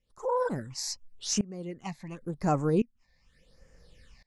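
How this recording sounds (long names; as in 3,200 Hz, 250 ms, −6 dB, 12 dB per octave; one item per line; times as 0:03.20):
tremolo saw up 0.71 Hz, depth 95%
phaser sweep stages 8, 0.88 Hz, lowest notch 390–3,800 Hz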